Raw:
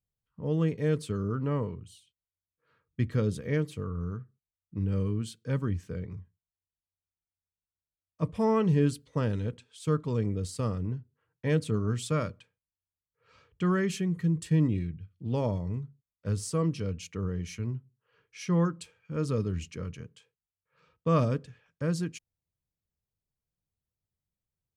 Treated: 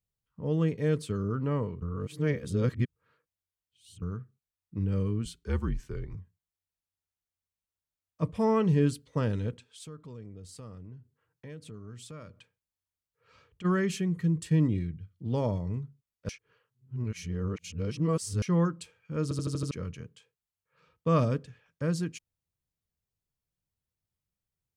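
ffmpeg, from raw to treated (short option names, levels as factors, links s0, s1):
-filter_complex "[0:a]asettb=1/sr,asplit=3[s0][s1][s2];[s0]atrim=end=5.254[s3];[s1]atrim=start=5.25:end=6.15,asetpts=PTS-STARTPTS,afade=t=in:d=0.004:c=qsin,afade=t=out:st=0.896:d=0.004:c=qsin,afreqshift=-56[s4];[s2]atrim=start=6.146[s5];[s3][s4]acrossfade=d=0.004:c1=hsin:c2=qsin[s6];[s6][s5]acrossfade=d=0.004:c1=qsin:c2=hsin,asplit=3[s7][s8][s9];[s7]afade=t=out:st=9.83:d=0.02[s10];[s8]acompressor=threshold=0.00447:ratio=3:attack=3.2:release=140:knee=1:detection=peak,afade=t=in:st=9.83:d=0.02,afade=t=out:st=13.64:d=0.02[s11];[s9]afade=t=in:st=13.64:d=0.02[s12];[s10][s11][s12]amix=inputs=3:normalize=0,asettb=1/sr,asplit=3[s13][s14][s15];[s13]atrim=end=14.654[s16];[s14]atrim=start=14.65:end=15.51,asetpts=PTS-STARTPTS,afade=t=in:d=0.004:c=qsin,afade=t=out:st=0.856:d=0.004:c=qsin,bandreject=f=2600:w=8.8[s17];[s15]atrim=start=15.506[s18];[s16][s17]acrossfade=d=0.004:c1=hsin:c2=qsin[s19];[s19][s18]acrossfade=d=0.004:c1=qsin:c2=hsin,asplit=11[s20][s21][s22][s23][s24][s25][s26][s27][s28][s29][s30];[s20]atrim=end=1.822[s31];[s21]atrim=start=1.818:end=4.022,asetpts=PTS-STARTPTS,areverse[s32];[s22]atrim=start=4.018:end=16.292[s33];[s23]atrim=start=16.288:end=18.422,asetpts=PTS-STARTPTS,areverse[s34];[s24]atrim=start=18.418:end=19.312[s35];[s25]atrim=start=19.228:end=19.312[s36];[s26]atrim=start=19.228:end=19.312[s37];[s27]atrim=start=19.228:end=19.312[s38];[s28]atrim=start=19.228:end=19.312[s39];[s29]atrim=start=19.228:end=19.312[s40];[s30]atrim=start=19.708[s41];[s31][s32]acrossfade=d=0.004:c1=hsin:c2=hsin[s42];[s42][s33]acrossfade=d=0.004:c1=hsin:c2=hsin[s43];[s43][s34]acrossfade=d=0.004:c1=hsin:c2=hsin[s44];[s44][s35]acrossfade=d=0.004:c1=hsin:c2=hsin[s45];[s45][s36]acrossfade=d=0.004:c1=hsin:c2=hsin[s46];[s46][s37]acrossfade=d=0.004:c1=hsin:c2=hsin[s47];[s47][s38]acrossfade=d=0.004:c1=hsin:c2=hsin[s48];[s48][s39]acrossfade=d=0.004:c1=hsin:c2=hsin[s49];[s49][s40]acrossfade=d=0.004:c1=hsin:c2=hsin[s50];[s50][s41]acrossfade=d=0.004:c1=hsin:c2=hsin"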